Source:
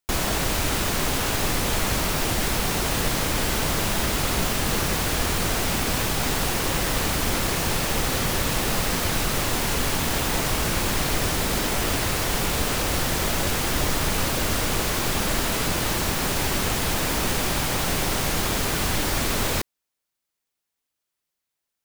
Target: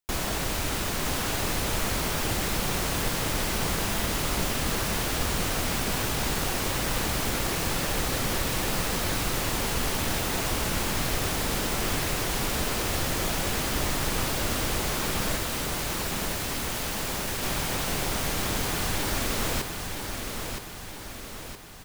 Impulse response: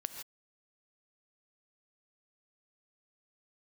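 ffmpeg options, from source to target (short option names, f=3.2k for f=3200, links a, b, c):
-filter_complex "[0:a]asettb=1/sr,asplit=3[a][b][c];[a]atrim=end=15.364[d];[b]atrim=start=15.36:end=17.43,asetpts=PTS-STARTPTS,afade=t=in:d=0.004:c=qsin,afade=t=out:st=2.066:d=0.004:c=qsin,aeval=exprs='0.0794*(abs(mod(val(0)/0.0794+3,4)-2)-1)':c=same[e];[c]atrim=start=17.426[f];[d][e]acrossfade=d=0.004:c1=hsin:c2=qsin[g];[g][f]acrossfade=d=0.004:c1=qsin:c2=hsin,aecho=1:1:968|1936|2904|3872|4840|5808:0.501|0.256|0.13|0.0665|0.0339|0.0173,volume=-5dB"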